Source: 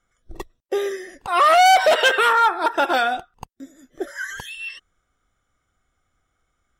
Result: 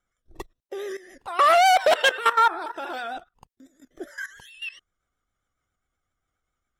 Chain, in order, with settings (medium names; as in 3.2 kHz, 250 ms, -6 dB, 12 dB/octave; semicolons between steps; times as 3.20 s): vibrato 7.4 Hz 60 cents; level held to a coarse grid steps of 16 dB